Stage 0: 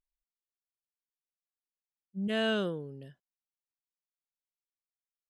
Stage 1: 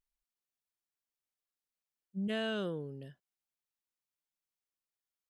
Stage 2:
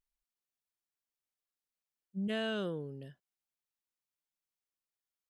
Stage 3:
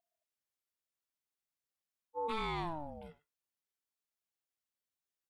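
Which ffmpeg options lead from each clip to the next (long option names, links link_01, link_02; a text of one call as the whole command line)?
ffmpeg -i in.wav -af "acompressor=threshold=-32dB:ratio=6" out.wav
ffmpeg -i in.wav -af anull out.wav
ffmpeg -i in.wav -filter_complex "[0:a]asplit=2[link_01][link_02];[link_02]adelay=100,highpass=300,lowpass=3400,asoftclip=type=hard:threshold=-36dB,volume=-15dB[link_03];[link_01][link_03]amix=inputs=2:normalize=0,aeval=exprs='val(0)*sin(2*PI*490*n/s+490*0.4/0.46*sin(2*PI*0.46*n/s))':channel_layout=same,volume=1dB" out.wav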